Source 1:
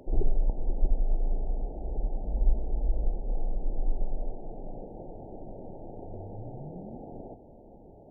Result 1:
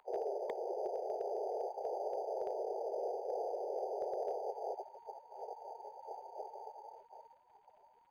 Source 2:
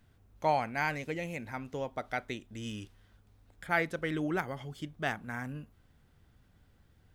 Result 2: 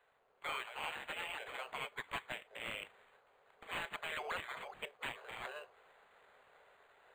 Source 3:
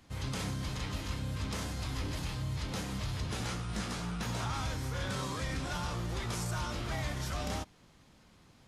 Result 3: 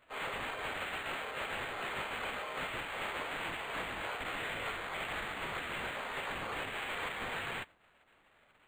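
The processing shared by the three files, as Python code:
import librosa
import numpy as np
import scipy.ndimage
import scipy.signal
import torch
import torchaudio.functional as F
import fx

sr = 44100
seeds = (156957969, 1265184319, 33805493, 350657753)

y = scipy.signal.medfilt(x, 5)
y = fx.spec_gate(y, sr, threshold_db=-20, keep='weak')
y = scipy.signal.sosfilt(scipy.signal.butter(16, 390.0, 'highpass', fs=sr, output='sos'), y)
y = fx.dynamic_eq(y, sr, hz=3400.0, q=1.1, threshold_db=-60.0, ratio=4.0, max_db=6)
y = fx.rider(y, sr, range_db=4, speed_s=0.5)
y = 10.0 ** (-37.5 / 20.0) * (np.abs((y / 10.0 ** (-37.5 / 20.0) + 3.0) % 4.0 - 2.0) - 1.0)
y = fx.dmg_crackle(y, sr, seeds[0], per_s=240.0, level_db=-70.0)
y = np.clip(y, -10.0 ** (-38.5 / 20.0), 10.0 ** (-38.5 / 20.0))
y = fx.air_absorb(y, sr, metres=52.0)
y = np.interp(np.arange(len(y)), np.arange(len(y))[::8], y[::8])
y = F.gain(torch.from_numpy(y), 9.5).numpy()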